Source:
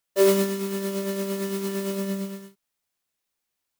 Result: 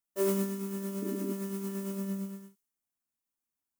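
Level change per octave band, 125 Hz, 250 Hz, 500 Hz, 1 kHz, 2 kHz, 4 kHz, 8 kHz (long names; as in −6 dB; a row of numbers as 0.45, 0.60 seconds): can't be measured, −5.5 dB, −11.0 dB, −10.0 dB, −13.5 dB, −15.5 dB, −9.0 dB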